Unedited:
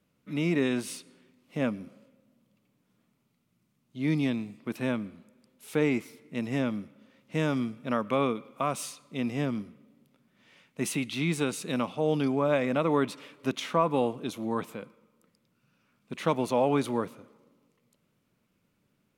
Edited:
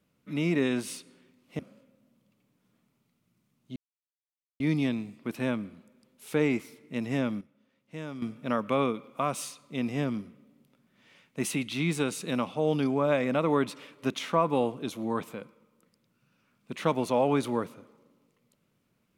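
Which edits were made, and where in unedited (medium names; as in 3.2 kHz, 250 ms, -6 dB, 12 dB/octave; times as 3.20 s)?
1.59–1.84 s: delete
4.01 s: insert silence 0.84 s
6.82–7.63 s: gain -11 dB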